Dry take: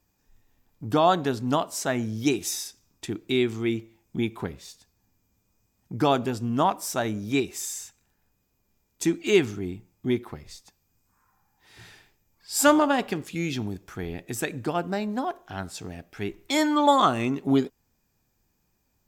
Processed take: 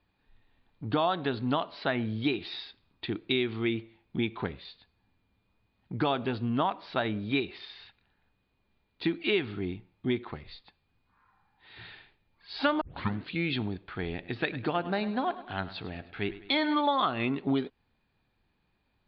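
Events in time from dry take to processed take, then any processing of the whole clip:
12.81 s: tape start 0.50 s
14.12–16.81 s: feedback delay 103 ms, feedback 52%, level -16 dB
whole clip: steep low-pass 4.4 kHz 96 dB/octave; tilt shelf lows -3 dB; compression 5:1, threshold -25 dBFS; trim +1 dB

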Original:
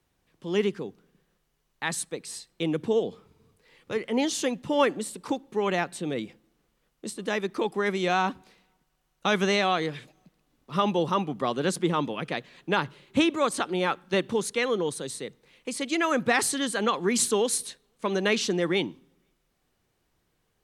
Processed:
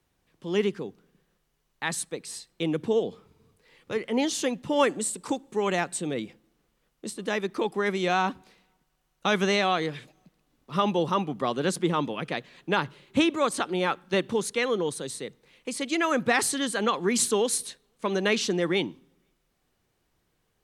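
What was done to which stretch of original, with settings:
4.76–6.07 s: peaking EQ 7.9 kHz +10 dB 0.59 oct

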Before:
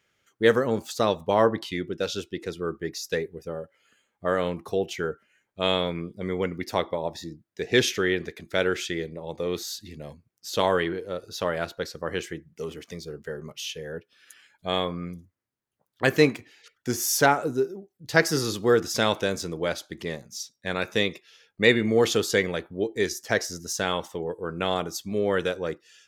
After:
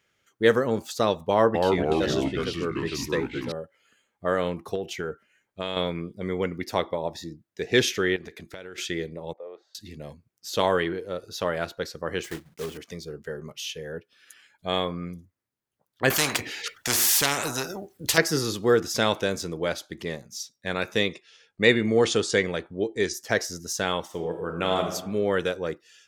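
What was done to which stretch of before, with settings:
1.31–3.52 s: ever faster or slower copies 233 ms, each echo -3 st, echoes 3
4.75–5.77 s: compression, threshold -25 dBFS
8.16–8.78 s: compression 20:1, threshold -35 dBFS
9.33–9.75 s: ladder band-pass 710 Hz, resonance 50%
12.24–12.79 s: block-companded coder 3-bit
16.10–18.18 s: spectrum-flattening compressor 4:1
21.09–23.14 s: steep low-pass 10 kHz 72 dB/octave
24.04–24.87 s: reverb throw, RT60 0.95 s, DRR 4 dB

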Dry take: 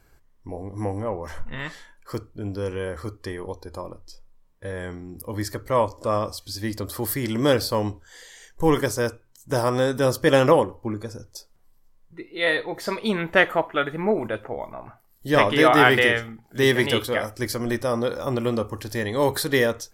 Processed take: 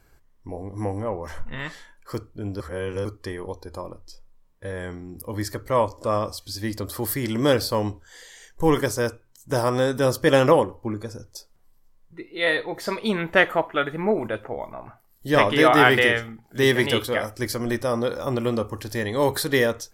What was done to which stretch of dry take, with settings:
2.60–3.05 s: reverse

